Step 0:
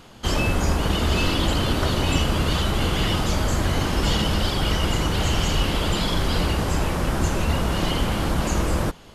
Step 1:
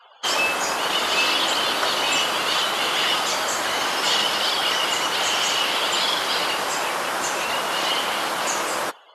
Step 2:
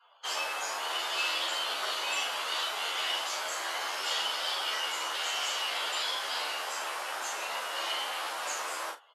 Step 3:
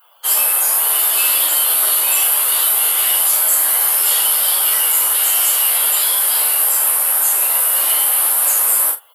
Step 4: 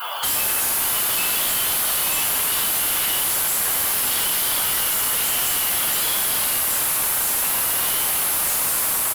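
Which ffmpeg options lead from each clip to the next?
ffmpeg -i in.wav -af "highpass=720,afftdn=noise_reduction=35:noise_floor=-49,volume=6.5dB" out.wav
ffmpeg -i in.wav -filter_complex "[0:a]highpass=550,asplit=2[link_01][link_02];[link_02]aecho=0:1:38|77:0.631|0.141[link_03];[link_01][link_03]amix=inputs=2:normalize=0,asplit=2[link_04][link_05];[link_05]adelay=11.9,afreqshift=1.9[link_06];[link_04][link_06]amix=inputs=2:normalize=1,volume=-9dB" out.wav
ffmpeg -i in.wav -af "lowshelf=frequency=390:gain=3.5,aexciter=amount=11.6:drive=8:freq=9100,highshelf=frequency=7300:gain=10.5,volume=6.5dB" out.wav
ffmpeg -i in.wav -filter_complex "[0:a]aecho=1:1:115|230|345|460|575|690:0.316|0.177|0.0992|0.0555|0.0311|0.0174,asplit=2[link_01][link_02];[link_02]highpass=frequency=720:poles=1,volume=35dB,asoftclip=type=tanh:threshold=-0.5dB[link_03];[link_01][link_03]amix=inputs=2:normalize=0,lowpass=frequency=4400:poles=1,volume=-6dB,asoftclip=type=tanh:threshold=-20dB" out.wav

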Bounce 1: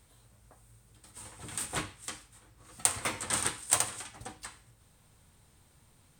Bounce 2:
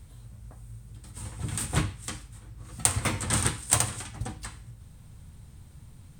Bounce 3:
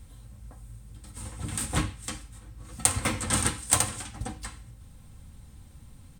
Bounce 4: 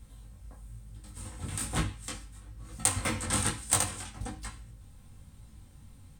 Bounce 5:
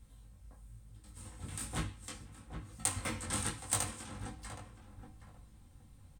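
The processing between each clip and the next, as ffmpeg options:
ffmpeg -i in.wav -af "bass=frequency=250:gain=14,treble=frequency=4000:gain=0,volume=3dB" out.wav
ffmpeg -i in.wav -af "aecho=1:1:3.8:0.39" out.wav
ffmpeg -i in.wav -af "flanger=delay=18.5:depth=3.5:speed=1.1" out.wav
ffmpeg -i in.wav -filter_complex "[0:a]asplit=2[link_01][link_02];[link_02]adelay=770,lowpass=frequency=1300:poles=1,volume=-8dB,asplit=2[link_03][link_04];[link_04]adelay=770,lowpass=frequency=1300:poles=1,volume=0.25,asplit=2[link_05][link_06];[link_06]adelay=770,lowpass=frequency=1300:poles=1,volume=0.25[link_07];[link_01][link_03][link_05][link_07]amix=inputs=4:normalize=0,volume=-7dB" out.wav

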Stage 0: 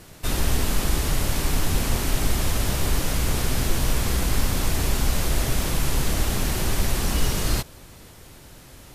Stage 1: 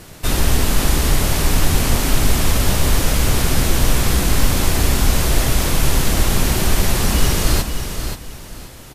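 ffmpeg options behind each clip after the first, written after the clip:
ffmpeg -i in.wav -af "aecho=1:1:531|1062|1593:0.398|0.0995|0.0249,volume=6.5dB" out.wav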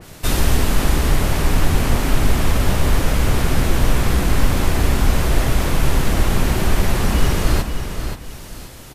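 ffmpeg -i in.wav -af "adynamicequalizer=threshold=0.00891:dfrequency=3100:dqfactor=0.7:tfrequency=3100:tqfactor=0.7:attack=5:release=100:ratio=0.375:range=4:mode=cutabove:tftype=highshelf" out.wav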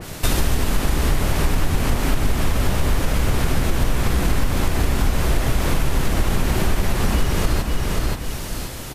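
ffmpeg -i in.wav -af "acompressor=threshold=-22dB:ratio=4,volume=6.5dB" out.wav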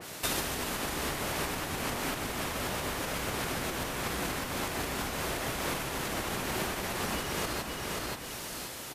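ffmpeg -i in.wav -af "highpass=frequency=440:poles=1,volume=-6dB" out.wav

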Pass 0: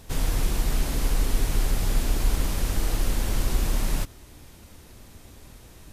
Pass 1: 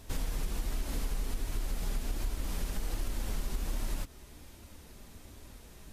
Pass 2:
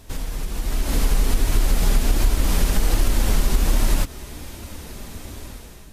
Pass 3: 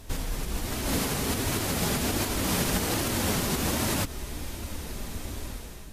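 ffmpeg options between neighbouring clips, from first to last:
ffmpeg -i in.wav -af "acompressor=threshold=-26dB:ratio=6,flanger=delay=3:depth=2:regen=-51:speed=1.3:shape=sinusoidal" out.wav
ffmpeg -i in.wav -af "dynaudnorm=framelen=540:gausssize=3:maxgain=11dB,volume=5dB" out.wav
ffmpeg -i in.wav -af "afftfilt=real='re*lt(hypot(re,im),0.794)':imag='im*lt(hypot(re,im),0.794)':win_size=1024:overlap=0.75" -ar 44100 -c:a libmp3lame -b:a 224k out.mp3

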